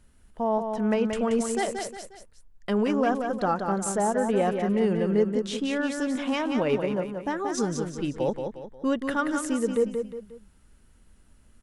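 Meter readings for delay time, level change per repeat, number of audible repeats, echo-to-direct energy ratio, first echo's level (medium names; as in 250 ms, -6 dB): 179 ms, -8.0 dB, 3, -5.5 dB, -6.0 dB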